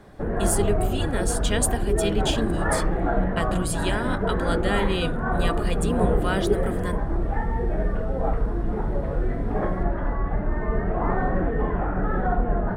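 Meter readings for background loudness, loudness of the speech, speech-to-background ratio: -26.0 LUFS, -28.5 LUFS, -2.5 dB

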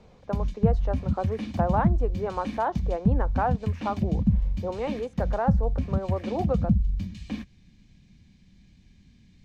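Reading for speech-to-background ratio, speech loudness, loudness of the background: -3.0 dB, -31.5 LUFS, -28.5 LUFS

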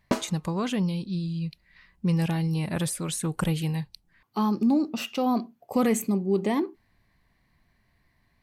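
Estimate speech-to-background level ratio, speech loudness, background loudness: 3.5 dB, -27.5 LUFS, -31.0 LUFS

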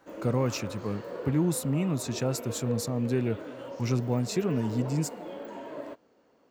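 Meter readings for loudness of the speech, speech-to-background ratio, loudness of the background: -30.0 LUFS, 10.5 dB, -40.5 LUFS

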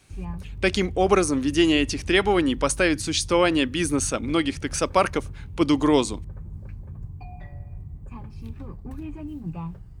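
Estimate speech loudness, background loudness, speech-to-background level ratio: -22.5 LUFS, -38.5 LUFS, 16.0 dB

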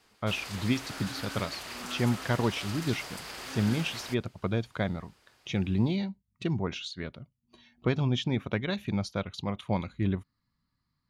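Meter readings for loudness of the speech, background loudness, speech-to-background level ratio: -32.0 LUFS, -39.5 LUFS, 7.5 dB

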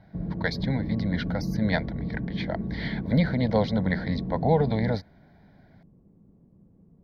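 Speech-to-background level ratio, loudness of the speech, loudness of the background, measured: 4.5 dB, -28.0 LUFS, -32.5 LUFS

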